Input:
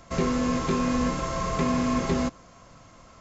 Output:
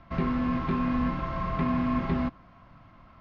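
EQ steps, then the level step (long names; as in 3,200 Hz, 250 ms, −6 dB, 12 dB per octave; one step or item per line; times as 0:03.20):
Bessel low-pass filter 3,300 Hz, order 8
high-frequency loss of the air 240 metres
parametric band 470 Hz −12.5 dB 0.59 octaves
0.0 dB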